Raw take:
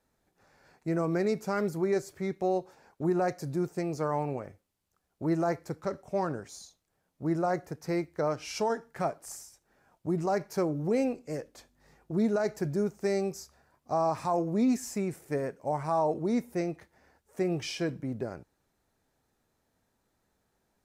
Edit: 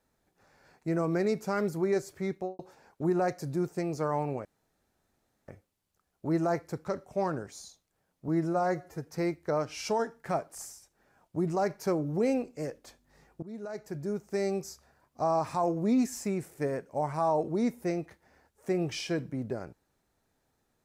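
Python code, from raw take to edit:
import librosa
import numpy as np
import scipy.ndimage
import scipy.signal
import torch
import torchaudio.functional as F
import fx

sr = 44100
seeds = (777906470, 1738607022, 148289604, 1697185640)

y = fx.studio_fade_out(x, sr, start_s=2.33, length_s=0.26)
y = fx.edit(y, sr, fx.insert_room_tone(at_s=4.45, length_s=1.03),
    fx.stretch_span(start_s=7.25, length_s=0.53, factor=1.5),
    fx.fade_in_from(start_s=12.13, length_s=1.2, floor_db=-21.0), tone=tone)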